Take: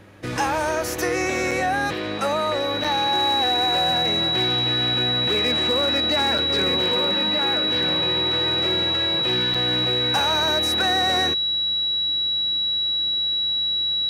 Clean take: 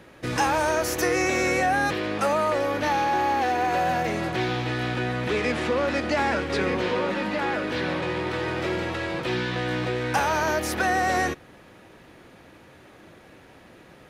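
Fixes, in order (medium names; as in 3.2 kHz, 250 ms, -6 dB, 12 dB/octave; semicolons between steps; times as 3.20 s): clip repair -14.5 dBFS; de-hum 99.3 Hz, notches 3; band-stop 3.9 kHz, Q 30; interpolate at 1.51/2.84/6.38/9.54 s, 5.2 ms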